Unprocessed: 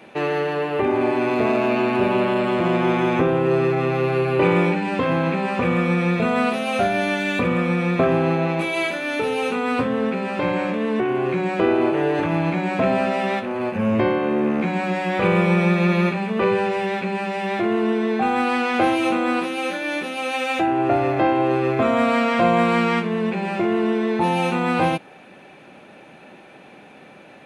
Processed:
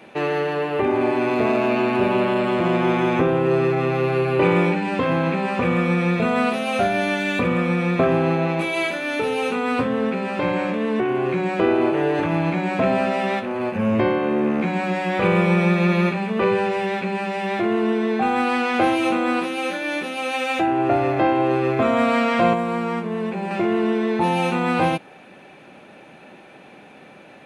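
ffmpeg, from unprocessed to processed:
ffmpeg -i in.wav -filter_complex "[0:a]asettb=1/sr,asplit=3[link_01][link_02][link_03];[link_01]atrim=end=22.534[link_04];[link_02]atrim=start=22.53:end=23.51,asetpts=PTS-STARTPTS,afade=type=in:duration=0.004:curve=qsin,afade=type=out:start_time=0.976:duration=0.004:curve=qsin,acrossover=split=520|1200|6900[link_05][link_06][link_07][link_08];[link_05]acompressor=threshold=-25dB:ratio=3[link_09];[link_06]acompressor=threshold=-27dB:ratio=3[link_10];[link_07]acompressor=threshold=-41dB:ratio=3[link_11];[link_08]acompressor=threshold=-58dB:ratio=3[link_12];[link_09][link_10][link_11][link_12]amix=inputs=4:normalize=0[link_13];[link_03]atrim=start=23.506[link_14];[link_04][link_13]acrossfade=duration=0.004:curve1=hsin:curve2=qsin[link_15];[link_15][link_14]acrossfade=duration=0.004:curve1=qsin:curve2=hsin" out.wav

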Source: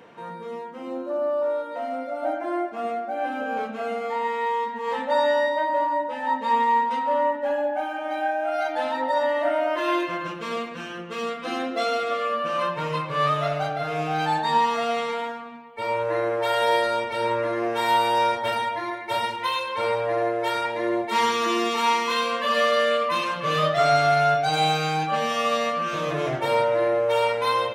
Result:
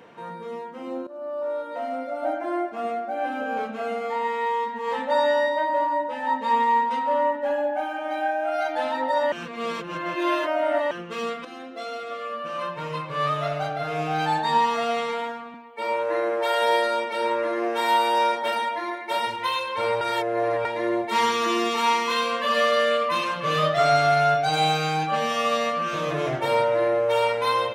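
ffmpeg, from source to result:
ffmpeg -i in.wav -filter_complex "[0:a]asettb=1/sr,asplit=3[link_01][link_02][link_03];[link_01]atrim=end=15.544[link_04];[link_02]atrim=start=15.54:end=19.27,asetpts=PTS-STARTPTS,afade=type=in:duration=0.004:curve=qsin,afade=type=out:start_time=3.726:duration=0.004:curve=qsin,highpass=frequency=200:width=0.5412,highpass=frequency=200:width=1.3066[link_05];[link_03]atrim=start=19.266[link_06];[link_04][link_05]acrossfade=duration=0.004:curve1=hsin:curve2=qsin[link_07];[link_07][link_06]acrossfade=duration=0.004:curve1=qsin:curve2=hsin,asplit=7[link_08][link_09][link_10][link_11][link_12][link_13][link_14];[link_08]atrim=end=1.07,asetpts=PTS-STARTPTS,afade=type=out:start_time=1.066:duration=0.004:curve=hsin:silence=0.158489[link_15];[link_09]atrim=start=1.07:end=9.322,asetpts=PTS-STARTPTS,afade=type=in:duration=0.68:silence=0.158489[link_16];[link_10]atrim=start=9.318:end=10.912,asetpts=PTS-STARTPTS,areverse[link_17];[link_11]atrim=start=10.908:end=11.45,asetpts=PTS-STARTPTS,afade=type=out:start_time=0.538:duration=0.004:curve=hsin:silence=0.237137[link_18];[link_12]atrim=start=11.45:end=20.012,asetpts=PTS-STARTPTS,afade=type=in:duration=2.68:silence=0.237137[link_19];[link_13]atrim=start=20.008:end=20.652,asetpts=PTS-STARTPTS,areverse[link_20];[link_14]atrim=start=20.648[link_21];[link_15][link_16]concat=n=2:v=0:a=1[link_22];[link_22][link_17]acrossfade=duration=0.004:curve1=hsin:curve2=hsin[link_23];[link_18][link_19]concat=n=2:v=0:a=1[link_24];[link_23][link_24]acrossfade=duration=0.004:curve1=hsin:curve2=hsin[link_25];[link_25][link_20]acrossfade=duration=0.004:curve1=hsin:curve2=hsin[link_26];[link_26][link_21]acrossfade=duration=0.004:curve1=hsin:curve2=hsin" out.wav

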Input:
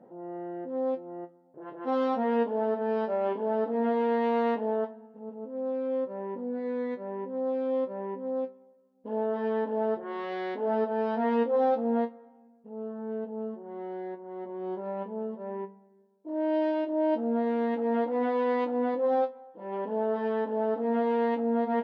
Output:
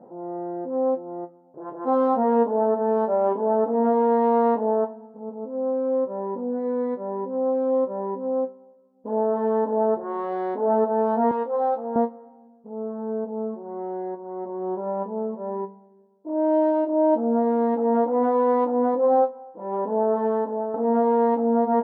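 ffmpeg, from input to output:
ffmpeg -i in.wav -filter_complex "[0:a]asettb=1/sr,asplit=3[link_01][link_02][link_03];[link_01]atrim=end=11.314[link_04];[link_02]atrim=start=11.31:end=11.96,asetpts=PTS-STARTPTS,afade=type=in:duration=0.004:curve=qsin,afade=type=out:start_time=0.646:duration=0.004:curve=qsin,highpass=frequency=960:poles=1[link_05];[link_03]atrim=start=11.956[link_06];[link_04][link_05]acrossfade=duration=0.004:curve1=hsin:curve2=qsin[link_07];[link_07][link_06]acrossfade=duration=0.004:curve1=qsin:curve2=hsin,asplit=2[link_08][link_09];[link_08]atrim=end=20.74,asetpts=PTS-STARTPTS,afade=type=out:start_time=20.28:duration=0.46:silence=0.334965[link_10];[link_09]atrim=start=20.74,asetpts=PTS-STARTPTS,afade=type=in:duration=0.004:curve=hsin:silence=0.334965[link_11];[link_10][link_11]concat=n=2:v=0:a=1,highshelf=frequency=1600:width_type=q:width=1.5:gain=-13.5,volume=5.5dB" out.wav

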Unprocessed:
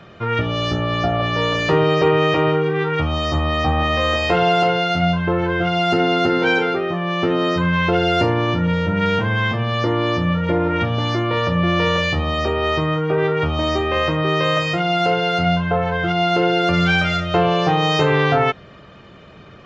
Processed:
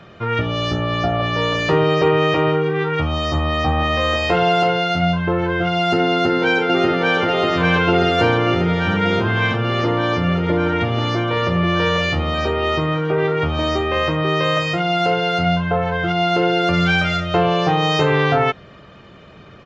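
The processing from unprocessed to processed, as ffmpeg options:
ffmpeg -i in.wav -filter_complex "[0:a]asplit=2[link_01][link_02];[link_02]afade=type=in:start_time=6.1:duration=0.01,afade=type=out:start_time=7.19:duration=0.01,aecho=0:1:590|1180|1770|2360|2950|3540|4130|4720|5310|5900|6490|7080:0.841395|0.673116|0.538493|0.430794|0.344635|0.275708|0.220567|0.176453|0.141163|0.11293|0.0903441|0.0722753[link_03];[link_01][link_03]amix=inputs=2:normalize=0" out.wav

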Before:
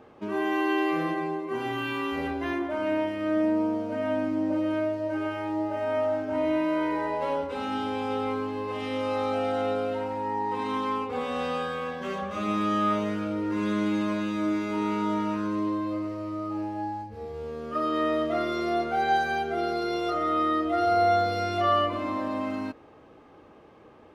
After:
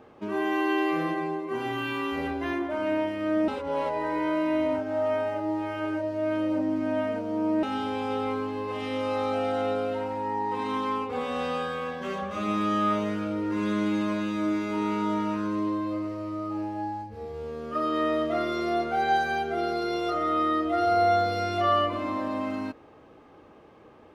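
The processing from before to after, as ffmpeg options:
ffmpeg -i in.wav -filter_complex "[0:a]asplit=3[link_01][link_02][link_03];[link_01]atrim=end=3.482[link_04];[link_02]atrim=start=3.478:end=7.632,asetpts=PTS-STARTPTS,areverse[link_05];[link_03]atrim=start=7.628[link_06];[link_04][link_05]acrossfade=duration=0.004:curve1=hsin:curve2=hsin[link_07];[link_07][link_06]acrossfade=duration=0.004:curve1=hsin:curve2=hsin" out.wav

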